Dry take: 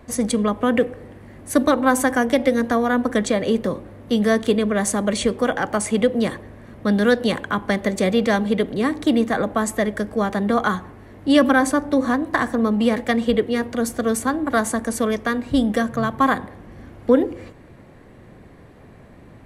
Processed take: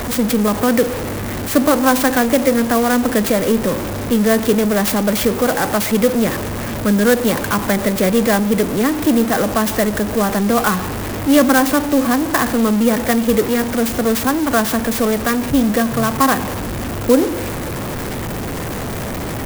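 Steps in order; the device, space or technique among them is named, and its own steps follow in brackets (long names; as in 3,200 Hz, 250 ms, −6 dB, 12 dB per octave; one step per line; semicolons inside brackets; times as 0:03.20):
early CD player with a faulty converter (converter with a step at zero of −20 dBFS; converter with an unsteady clock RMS 0.056 ms)
level +1.5 dB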